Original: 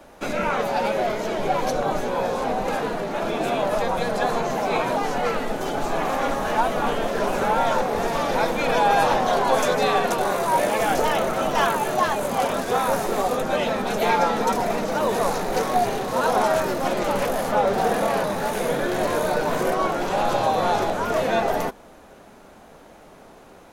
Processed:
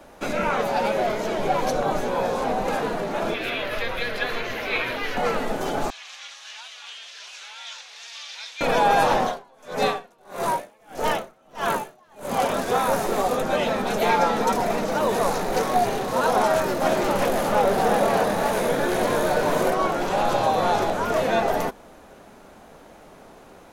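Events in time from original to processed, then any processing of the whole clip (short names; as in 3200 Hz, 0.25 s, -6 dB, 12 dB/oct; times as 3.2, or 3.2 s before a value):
3.34–5.17 EQ curve 110 Hz 0 dB, 170 Hz -14 dB, 250 Hz -7 dB, 500 Hz -5 dB, 810 Hz -13 dB, 2000 Hz +7 dB, 3000 Hz +6 dB, 4500 Hz +1 dB, 8000 Hz -12 dB, 12000 Hz -1 dB
5.9–8.61 Butterworth band-pass 4300 Hz, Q 1.1
9.22–12.36 dB-linear tremolo 1.6 Hz, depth 36 dB
16.46–19.69 echo 0.356 s -5 dB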